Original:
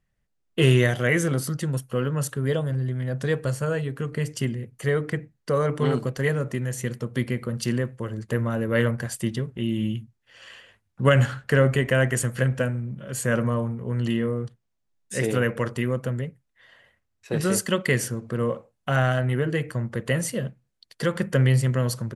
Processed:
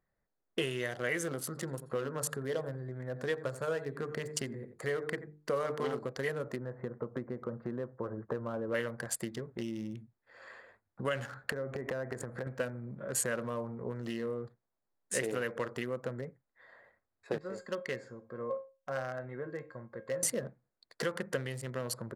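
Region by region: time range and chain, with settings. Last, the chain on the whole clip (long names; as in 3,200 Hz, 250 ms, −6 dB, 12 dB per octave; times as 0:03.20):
0:01.46–0:05.99: mains-hum notches 50/100/150/200/250/300/350/400/450 Hz + single-tap delay 86 ms −14.5 dB
0:06.56–0:08.74: low-pass filter 1,400 Hz 24 dB per octave + one half of a high-frequency compander encoder only
0:11.52–0:12.47: high-shelf EQ 2,200 Hz −11.5 dB + downward compressor 20 to 1, threshold −27 dBFS
0:17.38–0:20.23: low-pass filter 6,700 Hz 24 dB per octave + tuned comb filter 540 Hz, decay 0.27 s, mix 80%
whole clip: adaptive Wiener filter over 15 samples; downward compressor 6 to 1, threshold −30 dBFS; bass and treble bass −13 dB, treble +2 dB; level +2 dB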